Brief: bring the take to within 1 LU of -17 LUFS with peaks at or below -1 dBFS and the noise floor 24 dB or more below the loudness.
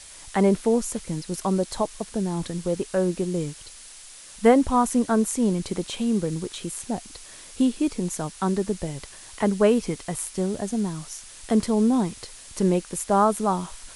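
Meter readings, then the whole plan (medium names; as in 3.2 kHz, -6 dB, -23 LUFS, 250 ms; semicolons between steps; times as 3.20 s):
noise floor -45 dBFS; noise floor target -49 dBFS; loudness -24.5 LUFS; peak level -5.5 dBFS; loudness target -17.0 LUFS
-> noise print and reduce 6 dB; trim +7.5 dB; peak limiter -1 dBFS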